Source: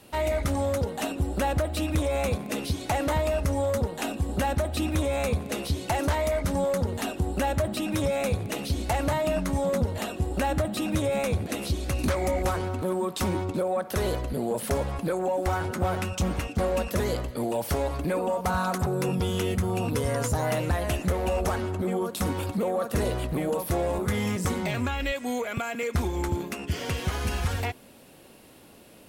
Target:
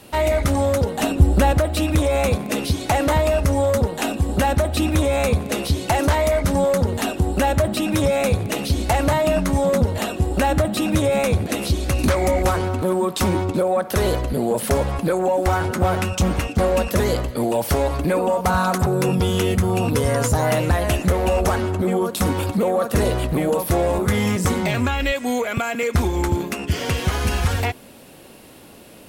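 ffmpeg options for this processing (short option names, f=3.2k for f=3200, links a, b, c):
-filter_complex "[0:a]asettb=1/sr,asplit=3[a][b][c];[a]atrim=end=0.984[d];[b]atrim=start=0.98:end=1.52,asetpts=PTS-STARTPTS,afade=t=in:d=0.004:c=qsin,afade=t=out:st=0.536:d=0.004:c=qsin,lowshelf=f=190:g=8.5[e];[c]atrim=start=1.516[f];[d][e]acrossfade=d=0.004:c1=hsin:c2=qsin[g];[g][f]acrossfade=d=0.004:c1=qsin:c2=hsin,volume=7.5dB"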